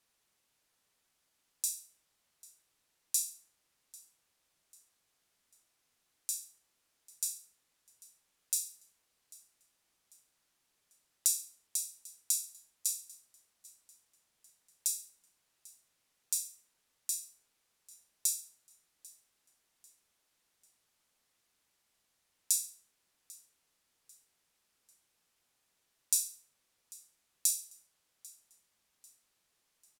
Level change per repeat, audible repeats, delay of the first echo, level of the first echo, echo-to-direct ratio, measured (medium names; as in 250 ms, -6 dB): -7.5 dB, 2, 794 ms, -22.5 dB, -21.5 dB